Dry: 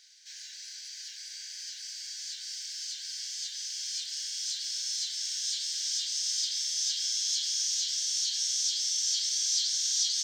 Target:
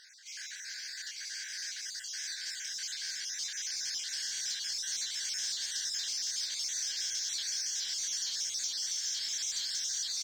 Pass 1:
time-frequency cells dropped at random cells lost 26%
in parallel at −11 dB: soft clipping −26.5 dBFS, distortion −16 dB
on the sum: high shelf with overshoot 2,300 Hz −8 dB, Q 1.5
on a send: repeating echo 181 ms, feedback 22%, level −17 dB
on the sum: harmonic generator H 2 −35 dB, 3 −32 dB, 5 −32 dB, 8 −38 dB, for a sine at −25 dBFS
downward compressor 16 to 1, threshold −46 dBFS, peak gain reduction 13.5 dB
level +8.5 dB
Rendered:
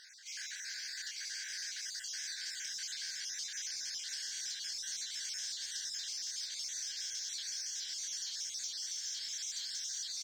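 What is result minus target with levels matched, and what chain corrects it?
downward compressor: peak gain reduction +6.5 dB; soft clipping: distortion −8 dB
time-frequency cells dropped at random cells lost 26%
in parallel at −11 dB: soft clipping −35 dBFS, distortion −8 dB
on the sum: high shelf with overshoot 2,300 Hz −8 dB, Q 1.5
on a send: repeating echo 181 ms, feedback 22%, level −17 dB
on the sum: harmonic generator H 2 −35 dB, 3 −32 dB, 5 −32 dB, 8 −38 dB, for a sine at −25 dBFS
downward compressor 16 to 1, threshold −40 dBFS, peak gain reduction 7 dB
level +8.5 dB

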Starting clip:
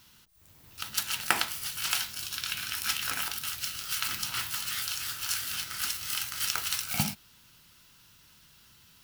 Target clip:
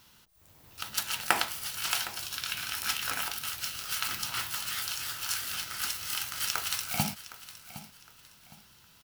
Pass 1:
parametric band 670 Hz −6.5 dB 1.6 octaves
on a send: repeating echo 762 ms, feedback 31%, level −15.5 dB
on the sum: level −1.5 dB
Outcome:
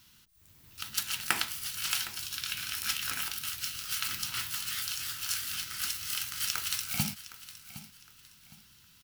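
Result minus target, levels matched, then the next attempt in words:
500 Hz band −9.0 dB
parametric band 670 Hz +5.5 dB 1.6 octaves
on a send: repeating echo 762 ms, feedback 31%, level −15.5 dB
on the sum: level −1.5 dB

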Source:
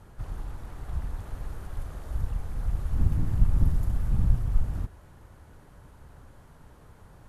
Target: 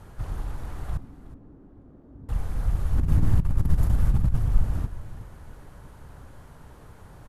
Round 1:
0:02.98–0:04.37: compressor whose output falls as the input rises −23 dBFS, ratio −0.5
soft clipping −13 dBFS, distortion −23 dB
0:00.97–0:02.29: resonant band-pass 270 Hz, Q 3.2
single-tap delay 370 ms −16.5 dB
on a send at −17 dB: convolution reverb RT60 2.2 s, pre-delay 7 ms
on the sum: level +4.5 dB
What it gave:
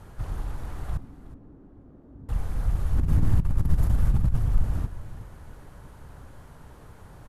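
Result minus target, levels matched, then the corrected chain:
soft clipping: distortion +17 dB
0:02.98–0:04.37: compressor whose output falls as the input rises −23 dBFS, ratio −0.5
soft clipping −3.5 dBFS, distortion −40 dB
0:00.97–0:02.29: resonant band-pass 270 Hz, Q 3.2
single-tap delay 370 ms −16.5 dB
on a send at −17 dB: convolution reverb RT60 2.2 s, pre-delay 7 ms
on the sum: level +4.5 dB

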